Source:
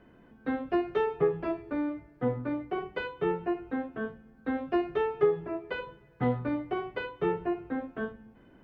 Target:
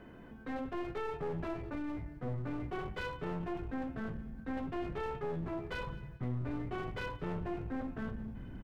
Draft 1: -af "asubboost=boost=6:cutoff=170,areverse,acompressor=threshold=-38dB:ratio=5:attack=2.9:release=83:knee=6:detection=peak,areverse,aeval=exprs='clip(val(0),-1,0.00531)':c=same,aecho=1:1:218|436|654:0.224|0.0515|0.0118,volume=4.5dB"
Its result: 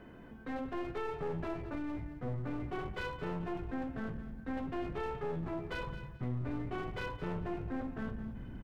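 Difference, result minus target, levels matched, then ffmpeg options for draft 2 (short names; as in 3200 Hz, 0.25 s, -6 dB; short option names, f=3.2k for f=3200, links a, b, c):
echo-to-direct +8.5 dB
-af "asubboost=boost=6:cutoff=170,areverse,acompressor=threshold=-38dB:ratio=5:attack=2.9:release=83:knee=6:detection=peak,areverse,aeval=exprs='clip(val(0),-1,0.00531)':c=same,aecho=1:1:218|436:0.0841|0.0194,volume=4.5dB"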